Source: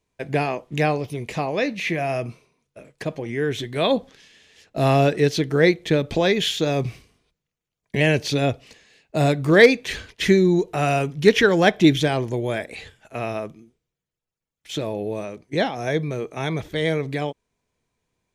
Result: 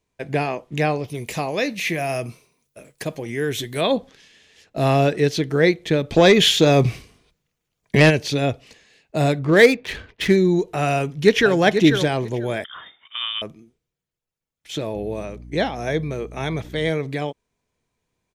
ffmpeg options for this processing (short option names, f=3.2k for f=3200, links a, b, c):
-filter_complex "[0:a]asettb=1/sr,asplit=3[a][b][c];[a]atrim=end=1.144[d];[b]atrim=start=1.14:end=3.81,asetpts=PTS-STARTPTS,afade=t=in:d=0.004:c=qsin,afade=t=out:st=2.666:d=0.004:c=qsin,aemphasis=mode=production:type=50fm[e];[c]atrim=start=3.806[f];[d][e]acrossfade=d=0.004:c1=hsin:c2=qsin[g];[g][f]acrossfade=d=0.004:c1=qsin:c2=hsin,asplit=3[h][i][j];[h]afade=t=out:st=6.16:d=0.02[k];[i]aeval=exprs='0.562*sin(PI/2*1.58*val(0)/0.562)':c=same,afade=t=in:st=6.16:d=0.02,afade=t=out:st=8.09:d=0.02[l];[j]afade=t=in:st=8.09:d=0.02[m];[k][l][m]amix=inputs=3:normalize=0,asettb=1/sr,asplit=3[n][o][p];[n]atrim=end=9.394[q];[o]atrim=start=9.39:end=10.36,asetpts=PTS-STARTPTS,afade=t=in:d=0.004:c=qsin,afade=t=out:st=0.966:d=0.004:c=qsin,adynamicsmooth=sensitivity=3.5:basefreq=2.3k[r];[p]atrim=start=10.356[s];[q][r]acrossfade=d=0.004:c1=hsin:c2=qsin[t];[t][s]acrossfade=d=0.004:c1=qsin:c2=hsin,asplit=2[u][v];[v]afade=t=in:st=10.96:d=0.01,afade=t=out:st=11.55:d=0.01,aecho=0:1:490|980:0.421697|0.0632545[w];[u][w]amix=inputs=2:normalize=0,asettb=1/sr,asplit=3[x][y][z];[x]atrim=end=12.644[aa];[y]atrim=start=12.64:end=13.42,asetpts=PTS-STARTPTS,afade=t=in:d=0.004:c=qsin,afade=t=out:st=0.776:d=0.004:c=qsin,lowpass=f=3.1k:t=q:w=0.5098,lowpass=f=3.1k:t=q:w=0.6013,lowpass=f=3.1k:t=q:w=0.9,lowpass=f=3.1k:t=q:w=2.563,afreqshift=-3700[ab];[z]atrim=start=13.416[ac];[aa][ab]acrossfade=d=0.004:c1=hsin:c2=qsin[ad];[ad][ac]acrossfade=d=0.004:c1=qsin:c2=hsin,asettb=1/sr,asplit=3[ae][af][ag];[ae]atrim=end=14.954[ah];[af]atrim=start=14.95:end=16.9,asetpts=PTS-STARTPTS,afade=t=in:d=0.004:c=qsin,afade=t=out:st=1.946:d=0.004:c=qsin,aeval=exprs='val(0)+0.0126*(sin(2*PI*60*n/s)+sin(2*PI*2*60*n/s)/2+sin(2*PI*3*60*n/s)/3+sin(2*PI*4*60*n/s)/4+sin(2*PI*5*60*n/s)/5)':c=same[ai];[ag]atrim=start=16.896[aj];[ah][ai]acrossfade=d=0.004:c1=hsin:c2=qsin[ak];[ak][aj]acrossfade=d=0.004:c1=qsin:c2=hsin"